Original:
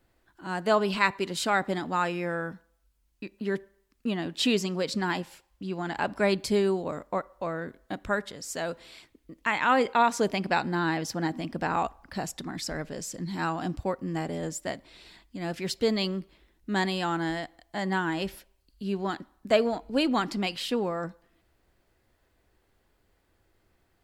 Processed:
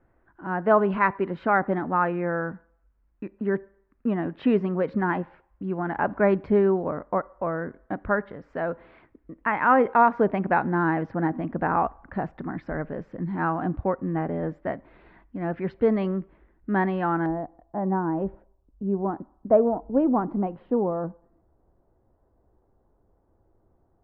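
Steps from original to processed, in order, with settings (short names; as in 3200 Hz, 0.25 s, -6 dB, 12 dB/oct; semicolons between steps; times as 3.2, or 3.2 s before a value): LPF 1700 Hz 24 dB/oct, from 17.26 s 1000 Hz; gain +4.5 dB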